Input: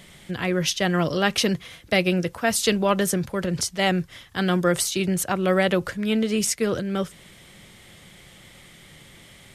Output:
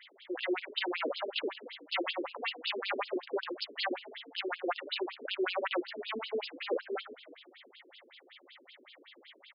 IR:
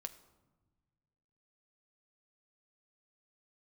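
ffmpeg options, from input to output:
-filter_complex "[0:a]asplit=7[link_01][link_02][link_03][link_04][link_05][link_06][link_07];[link_02]adelay=107,afreqshift=31,volume=-19dB[link_08];[link_03]adelay=214,afreqshift=62,volume=-23.2dB[link_09];[link_04]adelay=321,afreqshift=93,volume=-27.3dB[link_10];[link_05]adelay=428,afreqshift=124,volume=-31.5dB[link_11];[link_06]adelay=535,afreqshift=155,volume=-35.6dB[link_12];[link_07]adelay=642,afreqshift=186,volume=-39.8dB[link_13];[link_01][link_08][link_09][link_10][link_11][link_12][link_13]amix=inputs=7:normalize=0,aeval=exprs='0.106*(abs(mod(val(0)/0.106+3,4)-2)-1)':channel_layout=same,afftfilt=real='re*between(b*sr/1024,340*pow(3700/340,0.5+0.5*sin(2*PI*5.3*pts/sr))/1.41,340*pow(3700/340,0.5+0.5*sin(2*PI*5.3*pts/sr))*1.41)':imag='im*between(b*sr/1024,340*pow(3700/340,0.5+0.5*sin(2*PI*5.3*pts/sr))/1.41,340*pow(3700/340,0.5+0.5*sin(2*PI*5.3*pts/sr))*1.41)':win_size=1024:overlap=0.75"

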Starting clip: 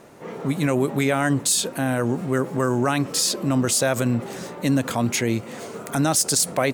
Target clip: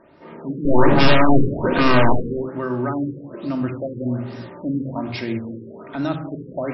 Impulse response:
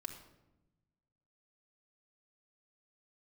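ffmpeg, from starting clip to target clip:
-filter_complex "[0:a]asettb=1/sr,asplit=3[link_01][link_02][link_03];[link_01]atrim=end=0.654[link_04];[link_02]atrim=start=0.65:end=2.13,asetpts=PTS-STARTPTS,afade=type=in:duration=0.004:curve=qsin,afade=type=out:start_time=1.476:duration=0.004:curve=qsin,aeval=exprs='0.422*sin(PI/2*5.62*val(0)/0.422)':channel_layout=same[link_05];[link_03]atrim=start=2.126[link_06];[link_04][link_05]acrossfade=duration=0.004:curve1=hsin:curve2=qsin[link_07];[link_07][link_06]acrossfade=duration=0.004:curve1=qsin:curve2=hsin[link_08];[1:a]atrim=start_sample=2205,afade=type=out:start_time=0.39:duration=0.01,atrim=end_sample=17640[link_09];[link_08][link_09]afir=irnorm=-1:irlink=0,afftfilt=real='re*lt(b*sr/1024,510*pow(5800/510,0.5+0.5*sin(2*PI*1.2*pts/sr)))':imag='im*lt(b*sr/1024,510*pow(5800/510,0.5+0.5*sin(2*PI*1.2*pts/sr)))':win_size=1024:overlap=0.75,volume=-1dB"

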